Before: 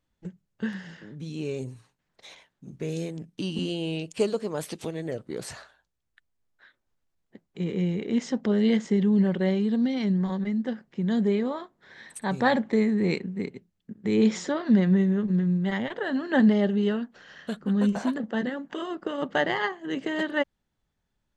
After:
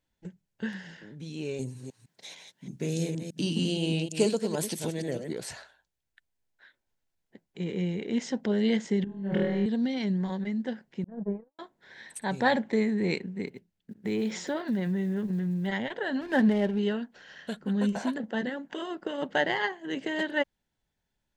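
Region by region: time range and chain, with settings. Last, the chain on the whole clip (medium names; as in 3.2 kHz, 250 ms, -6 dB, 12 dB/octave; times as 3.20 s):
1.59–5.33 s: chunks repeated in reverse 156 ms, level -7 dB + high-pass 190 Hz + tone controls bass +13 dB, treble +7 dB
9.04–9.66 s: treble shelf 2.5 kHz -9.5 dB + compressor with a negative ratio -28 dBFS, ratio -0.5 + flutter echo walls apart 4.3 m, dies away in 0.88 s
11.04–11.59 s: low-pass 1.2 kHz 24 dB/octave + gate -23 dBFS, range -58 dB + comb 6.1 ms, depth 46%
13.47–15.68 s: block-companded coder 7-bit + compression 4:1, threshold -22 dBFS + treble shelf 6.3 kHz -5.5 dB
16.21–16.79 s: low-pass 3.8 kHz + hysteresis with a dead band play -36.5 dBFS
whole clip: bass shelf 470 Hz -4.5 dB; band-stop 1.2 kHz, Q 5.1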